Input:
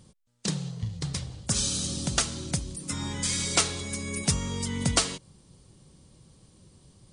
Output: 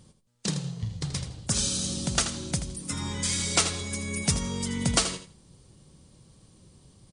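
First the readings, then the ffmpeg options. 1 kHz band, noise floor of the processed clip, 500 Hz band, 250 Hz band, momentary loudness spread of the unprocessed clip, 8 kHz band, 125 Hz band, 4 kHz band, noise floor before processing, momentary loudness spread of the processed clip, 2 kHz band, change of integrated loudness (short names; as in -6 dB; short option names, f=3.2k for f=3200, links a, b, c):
+0.5 dB, -61 dBFS, +0.5 dB, +1.0 dB, 9 LU, +0.5 dB, 0.0 dB, +0.5 dB, -60 dBFS, 9 LU, +0.5 dB, +0.5 dB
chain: -af "aecho=1:1:81|162|243:0.299|0.0597|0.0119"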